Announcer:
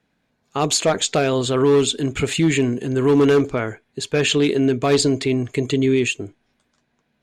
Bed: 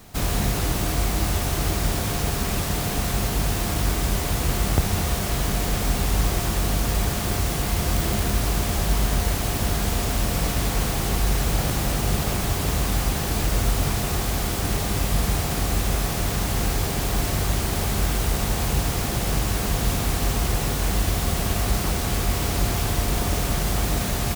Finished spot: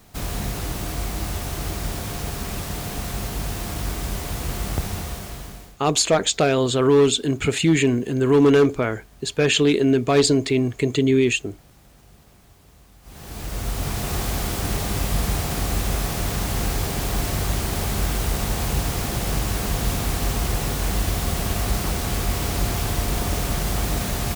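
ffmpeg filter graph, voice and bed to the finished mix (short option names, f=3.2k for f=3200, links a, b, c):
-filter_complex "[0:a]adelay=5250,volume=0dB[a];[1:a]volume=23.5dB,afade=t=out:st=4.85:d=0.92:silence=0.0630957,afade=t=in:st=13.02:d=1.18:silence=0.0398107[b];[a][b]amix=inputs=2:normalize=0"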